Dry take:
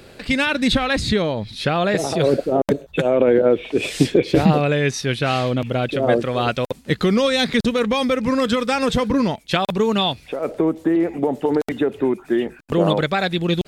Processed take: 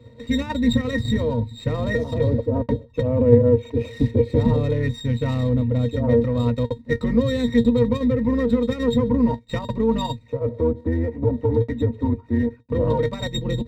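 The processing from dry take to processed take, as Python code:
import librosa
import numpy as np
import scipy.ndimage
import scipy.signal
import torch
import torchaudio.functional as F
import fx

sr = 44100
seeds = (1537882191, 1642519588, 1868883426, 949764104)

p1 = fx.octave_divider(x, sr, octaves=2, level_db=1.0)
p2 = fx.octave_resonator(p1, sr, note='A#', decay_s=0.11)
p3 = fx.level_steps(p2, sr, step_db=17)
p4 = p2 + (p3 * librosa.db_to_amplitude(-0.5))
p5 = fx.running_max(p4, sr, window=3)
y = p5 * librosa.db_to_amplitude(4.0)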